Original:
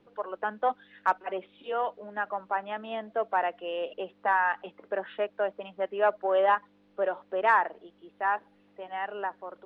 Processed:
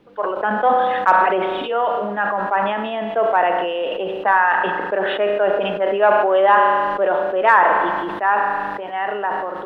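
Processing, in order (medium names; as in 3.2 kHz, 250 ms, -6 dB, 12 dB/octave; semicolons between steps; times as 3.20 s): spring tank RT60 1.2 s, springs 34 ms, chirp 25 ms, DRR 10.5 dB; decay stretcher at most 27 dB/s; trim +9 dB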